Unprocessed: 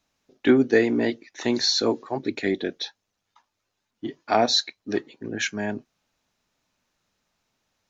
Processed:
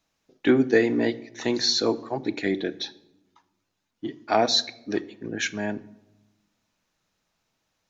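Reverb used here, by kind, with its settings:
rectangular room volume 3,500 cubic metres, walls furnished, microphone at 0.63 metres
level −1 dB

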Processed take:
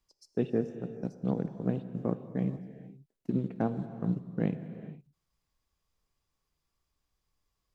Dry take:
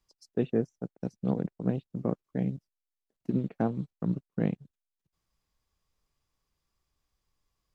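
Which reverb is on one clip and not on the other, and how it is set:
reverb whose tail is shaped and stops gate 490 ms flat, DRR 10 dB
level −1.5 dB

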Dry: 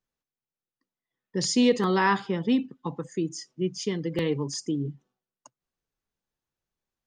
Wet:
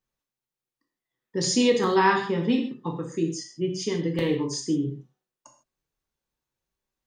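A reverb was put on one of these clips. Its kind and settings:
reverb whose tail is shaped and stops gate 180 ms falling, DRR 1.5 dB

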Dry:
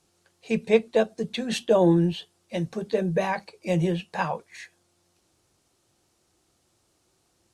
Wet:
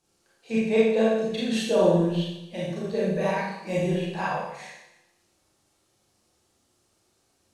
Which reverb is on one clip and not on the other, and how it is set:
four-comb reverb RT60 0.91 s, combs from 28 ms, DRR −7 dB
level −7.5 dB

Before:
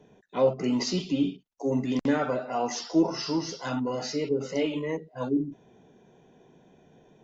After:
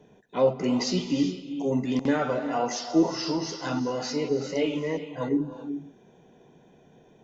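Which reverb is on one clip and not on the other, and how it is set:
reverb whose tail is shaped and stops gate 430 ms rising, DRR 9.5 dB
level +1 dB

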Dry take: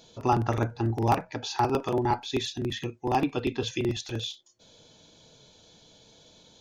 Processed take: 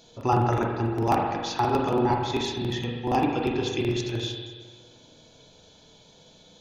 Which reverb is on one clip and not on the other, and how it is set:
spring reverb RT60 1.5 s, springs 38/42 ms, chirp 40 ms, DRR 0.5 dB

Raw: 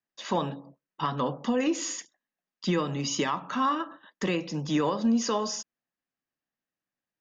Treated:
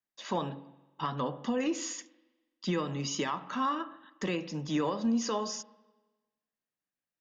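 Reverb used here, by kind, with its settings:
spring reverb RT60 1.2 s, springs 43/50 ms, chirp 75 ms, DRR 17 dB
level −4.5 dB

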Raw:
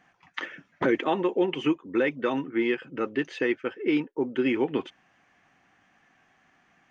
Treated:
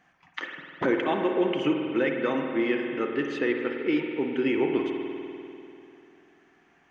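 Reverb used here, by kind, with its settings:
spring reverb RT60 2.8 s, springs 49 ms, chirp 30 ms, DRR 2.5 dB
level −1.5 dB

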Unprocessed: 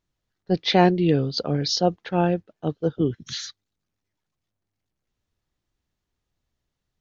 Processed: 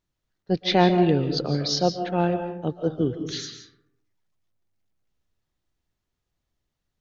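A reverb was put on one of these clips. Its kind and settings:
comb and all-pass reverb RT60 0.82 s, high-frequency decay 0.4×, pre-delay 105 ms, DRR 7.5 dB
level −1.5 dB

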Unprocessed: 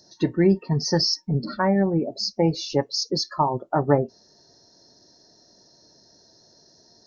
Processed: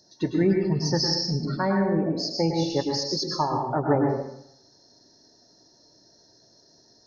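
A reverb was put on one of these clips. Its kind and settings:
dense smooth reverb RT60 0.74 s, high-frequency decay 0.75×, pre-delay 95 ms, DRR 1.5 dB
level −4 dB

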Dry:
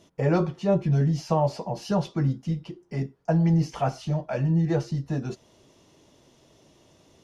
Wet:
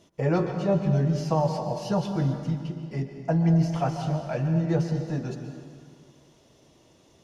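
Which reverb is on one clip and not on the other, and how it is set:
dense smooth reverb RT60 2.1 s, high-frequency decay 0.75×, pre-delay 115 ms, DRR 6 dB
level −1.5 dB

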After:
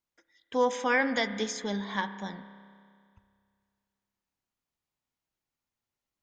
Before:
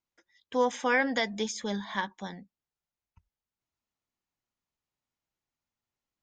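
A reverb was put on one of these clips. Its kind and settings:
spring reverb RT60 2.2 s, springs 30 ms, chirp 55 ms, DRR 11.5 dB

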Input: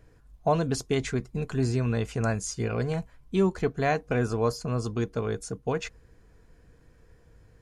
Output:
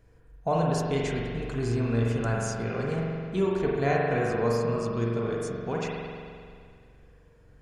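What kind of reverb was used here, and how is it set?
spring reverb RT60 2.2 s, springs 43 ms, chirp 70 ms, DRR −3 dB
level −4 dB

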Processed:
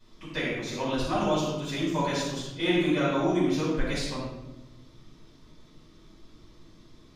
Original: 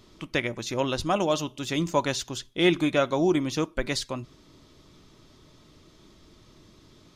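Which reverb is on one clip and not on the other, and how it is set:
rectangular room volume 410 cubic metres, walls mixed, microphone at 8.6 metres
level −18.5 dB

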